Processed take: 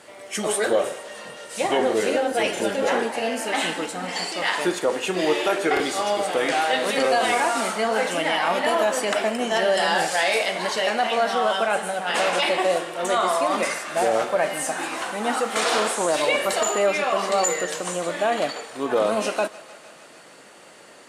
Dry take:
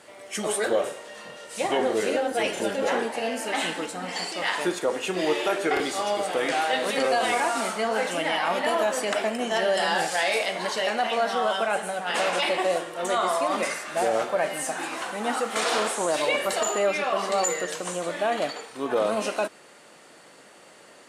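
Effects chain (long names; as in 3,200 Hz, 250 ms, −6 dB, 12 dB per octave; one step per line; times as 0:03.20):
feedback echo with a high-pass in the loop 153 ms, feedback 80%, level −20 dB
level +3 dB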